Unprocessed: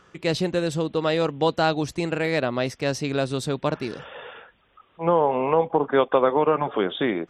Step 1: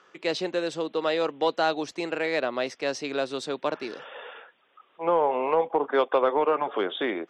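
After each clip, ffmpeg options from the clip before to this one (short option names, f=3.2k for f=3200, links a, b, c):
-filter_complex "[0:a]highpass=f=190:p=1,acrossover=split=250 7500:gain=0.126 1 0.0891[a][b][c];[a][b][c]amix=inputs=3:normalize=0,acontrast=54,volume=-7.5dB"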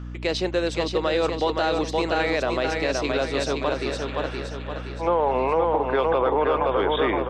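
-filter_complex "[0:a]asplit=2[a][b];[b]aecho=0:1:520|1040|1560|2080|2600|3120:0.596|0.286|0.137|0.0659|0.0316|0.0152[c];[a][c]amix=inputs=2:normalize=0,aeval=exprs='val(0)+0.0141*(sin(2*PI*60*n/s)+sin(2*PI*2*60*n/s)/2+sin(2*PI*3*60*n/s)/3+sin(2*PI*4*60*n/s)/4+sin(2*PI*5*60*n/s)/5)':c=same,alimiter=limit=-17dB:level=0:latency=1:release=34,volume=4dB"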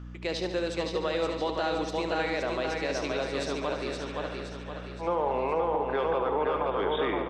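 -af "aecho=1:1:72|144|216|288|360|432|504:0.376|0.214|0.122|0.0696|0.0397|0.0226|0.0129,volume=-7dB"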